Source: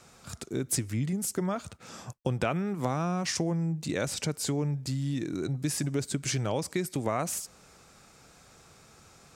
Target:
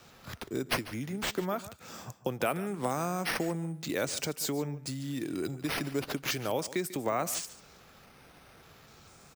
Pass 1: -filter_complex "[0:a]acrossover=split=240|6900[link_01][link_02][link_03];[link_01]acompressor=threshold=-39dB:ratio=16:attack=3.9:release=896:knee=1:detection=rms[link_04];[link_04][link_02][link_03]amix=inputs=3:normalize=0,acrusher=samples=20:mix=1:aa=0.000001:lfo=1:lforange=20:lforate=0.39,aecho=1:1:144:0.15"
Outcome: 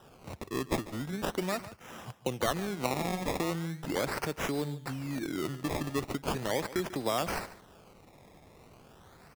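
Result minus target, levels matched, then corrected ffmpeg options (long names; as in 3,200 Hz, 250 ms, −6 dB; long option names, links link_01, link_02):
sample-and-hold swept by an LFO: distortion +7 dB
-filter_complex "[0:a]acrossover=split=240|6900[link_01][link_02][link_03];[link_01]acompressor=threshold=-39dB:ratio=16:attack=3.9:release=896:knee=1:detection=rms[link_04];[link_04][link_02][link_03]amix=inputs=3:normalize=0,acrusher=samples=4:mix=1:aa=0.000001:lfo=1:lforange=4:lforate=0.39,aecho=1:1:144:0.15"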